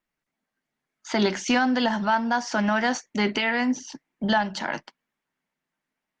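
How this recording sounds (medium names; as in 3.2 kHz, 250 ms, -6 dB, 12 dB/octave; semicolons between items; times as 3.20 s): Opus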